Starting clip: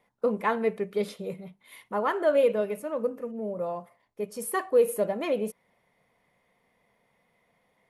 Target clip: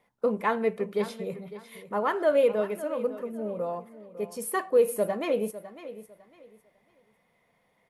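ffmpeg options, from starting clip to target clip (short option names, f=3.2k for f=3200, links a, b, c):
-af "aecho=1:1:553|1106|1659:0.188|0.0471|0.0118"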